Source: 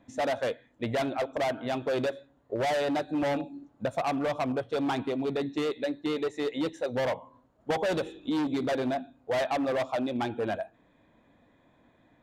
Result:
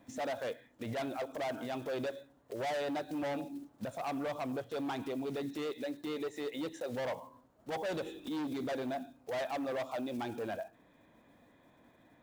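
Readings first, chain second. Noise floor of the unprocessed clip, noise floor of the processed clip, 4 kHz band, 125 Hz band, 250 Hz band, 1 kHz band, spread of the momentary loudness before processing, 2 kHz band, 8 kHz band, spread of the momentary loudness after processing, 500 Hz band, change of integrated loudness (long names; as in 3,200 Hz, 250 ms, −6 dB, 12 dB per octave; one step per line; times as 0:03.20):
−65 dBFS, −65 dBFS, −7.5 dB, −8.5 dB, −7.5 dB, −8.0 dB, 5 LU, −8.0 dB, −5.5 dB, 6 LU, −8.0 dB, −8.0 dB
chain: one scale factor per block 5 bits
low-shelf EQ 96 Hz −6 dB
downward compressor, threshold −31 dBFS, peak gain reduction 6.5 dB
brickwall limiter −31.5 dBFS, peak gain reduction 10 dB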